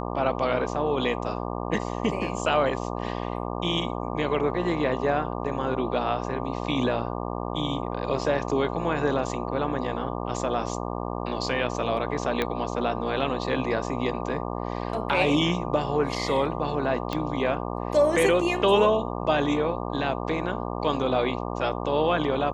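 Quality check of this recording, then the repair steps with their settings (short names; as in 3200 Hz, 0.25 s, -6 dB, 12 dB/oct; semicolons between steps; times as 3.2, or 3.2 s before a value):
buzz 60 Hz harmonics 20 -31 dBFS
12.42 pop -12 dBFS
17.13 pop -15 dBFS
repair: de-click; de-hum 60 Hz, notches 20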